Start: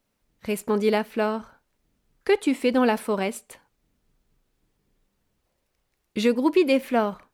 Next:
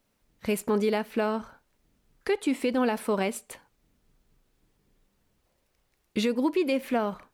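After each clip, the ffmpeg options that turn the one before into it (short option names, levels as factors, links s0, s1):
-af "alimiter=limit=0.112:level=0:latency=1:release=251,volume=1.26"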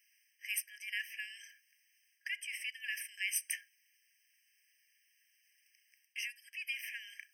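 -af "areverse,acompressor=threshold=0.0251:ratio=12,areverse,afftfilt=real='re*eq(mod(floor(b*sr/1024/1600),2),1)':imag='im*eq(mod(floor(b*sr/1024/1600),2),1)':win_size=1024:overlap=0.75,volume=2.66"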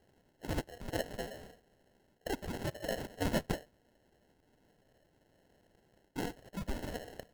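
-af "acrusher=samples=37:mix=1:aa=0.000001,volume=1.5"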